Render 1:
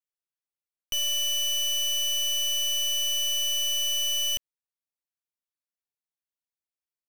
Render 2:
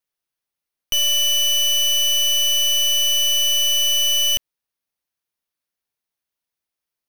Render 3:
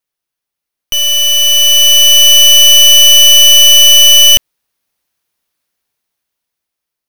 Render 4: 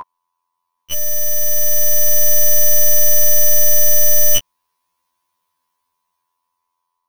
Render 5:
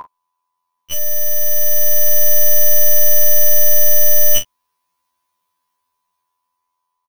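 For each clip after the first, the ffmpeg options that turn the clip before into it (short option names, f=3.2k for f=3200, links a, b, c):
-af "equalizer=f=7.5k:t=o:w=0.22:g=-7.5,volume=9dB"
-af "dynaudnorm=f=460:g=7:m=10dB,volume=4.5dB"
-af "aeval=exprs='val(0)+0.282*sin(2*PI*1000*n/s)':c=same,afftfilt=real='re*2*eq(mod(b,4),0)':imag='im*2*eq(mod(b,4),0)':win_size=2048:overlap=0.75,volume=-2dB"
-filter_complex "[0:a]asplit=2[a][b];[b]adelay=40,volume=-10dB[c];[a][c]amix=inputs=2:normalize=0,volume=-1dB"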